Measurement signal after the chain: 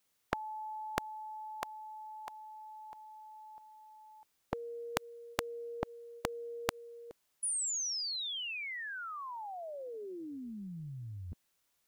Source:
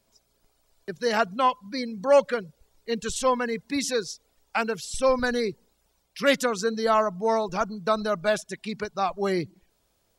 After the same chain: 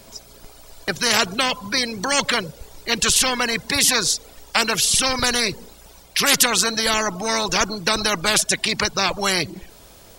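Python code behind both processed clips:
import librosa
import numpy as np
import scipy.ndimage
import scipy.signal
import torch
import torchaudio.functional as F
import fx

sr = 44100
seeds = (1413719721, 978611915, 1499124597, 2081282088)

y = fx.spectral_comp(x, sr, ratio=4.0)
y = y * 10.0 ** (6.5 / 20.0)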